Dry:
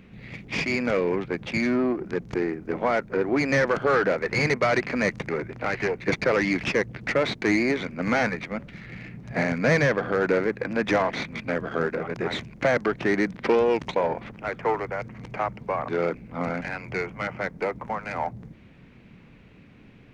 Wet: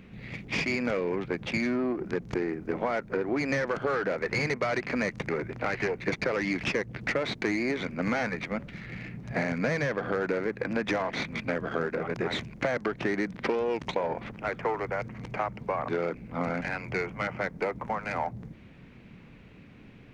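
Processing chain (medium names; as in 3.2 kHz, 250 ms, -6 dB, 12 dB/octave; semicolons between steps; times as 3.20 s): compression, threshold -25 dBFS, peak gain reduction 9 dB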